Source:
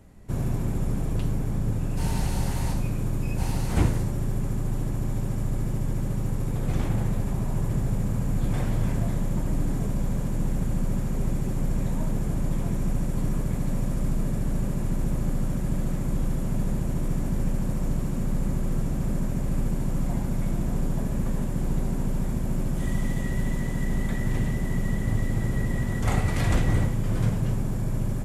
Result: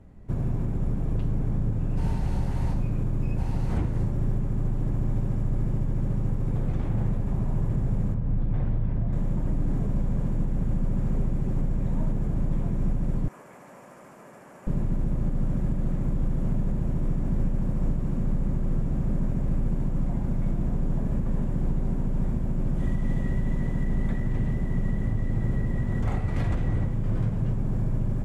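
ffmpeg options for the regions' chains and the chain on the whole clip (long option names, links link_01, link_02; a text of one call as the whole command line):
ffmpeg -i in.wav -filter_complex "[0:a]asettb=1/sr,asplit=3[link_01][link_02][link_03];[link_01]atrim=end=8.144[link_04];[link_02]atrim=start=8.14:end=9.13,asetpts=PTS-STARTPTS,afade=type=in:duration=0.004:curve=qsin,afade=type=out:start_time=0.986:duration=0.004:curve=qsin,aemphasis=mode=reproduction:type=75fm,acrossover=split=140|3000[link_05][link_06][link_07];[link_06]acompressor=threshold=-33dB:ratio=2.5:attack=3.2:release=140:knee=2.83:detection=peak[link_08];[link_05][link_08][link_07]amix=inputs=3:normalize=0,lowpass=5500[link_09];[link_03]atrim=start=9.126[link_10];[link_04][link_09]acrossfade=duration=0.004:curve1=hsin:curve2=qsin[link_11];[link_11][link_10]acrossfade=duration=0.004:curve1=qsin:curve2=hsin,asettb=1/sr,asplit=3[link_12][link_13][link_14];[link_12]atrim=end=13.284[link_15];[link_13]atrim=start=13.28:end=14.67,asetpts=PTS-STARTPTS,afade=type=in:duration=0.004:curve=qsin,afade=type=out:start_time=1.386:duration=0.004:curve=qsin,highpass=800,equalizer=frequency=3800:width_type=o:width=0.59:gain=-9[link_16];[link_14]atrim=start=14.666[link_17];[link_15][link_16]acrossfade=duration=0.004:curve1=hsin:curve2=qsin[link_18];[link_18][link_17]acrossfade=duration=0.004:curve1=qsin:curve2=hsin,lowpass=frequency=1600:poles=1,lowshelf=frequency=240:gain=3.5,alimiter=limit=-16dB:level=0:latency=1:release=184,volume=-1dB" out.wav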